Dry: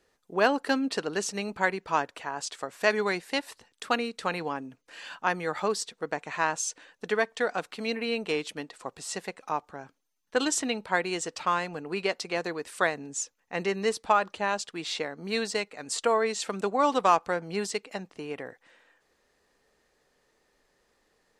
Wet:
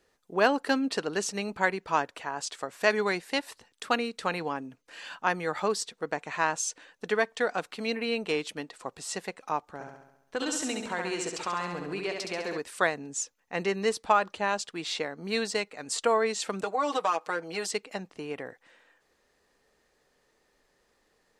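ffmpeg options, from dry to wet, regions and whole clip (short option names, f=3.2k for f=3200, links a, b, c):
-filter_complex "[0:a]asettb=1/sr,asplit=3[a][b][c];[a]atrim=end=9.614[d];[b]atrim=start=9.61:end=12.58,asetpts=PTS-STARTPTS,afade=t=in:d=0.004:c=qsin,afade=t=out:st=2.966:d=0.004:c=qsin,acompressor=threshold=-32dB:ratio=2:attack=3.2:release=140:knee=1:detection=peak,aecho=1:1:68|136|204|272|340|408|476|544:0.596|0.34|0.194|0.11|0.0629|0.0358|0.0204|0.0116,atrim=end_sample=130977[e];[c]atrim=start=12.576[f];[d][e]acrossfade=d=0.004:c1=hsin:c2=qsin[g];[g][f]acrossfade=d=0.004:c1=qsin:c2=hsin,asettb=1/sr,asplit=3[h][i][j];[h]atrim=end=16.634[k];[i]atrim=start=16.63:end=17.71,asetpts=PTS-STARTPTS,afade=t=in:d=0.004:c=qsin,afade=t=out:st=1.076:d=0.004:c=qsin,highpass=350,aecho=1:1:6.4:0.85,atrim=end_sample=47628,acompressor=threshold=-25dB:ratio=2.5:attack=3.2:release=140:knee=1:detection=peak[l];[j]atrim=start=17.706[m];[k][l]acrossfade=d=0.004:c1=hsin:c2=qsin[n];[n][m]acrossfade=d=0.004:c1=qsin:c2=hsin"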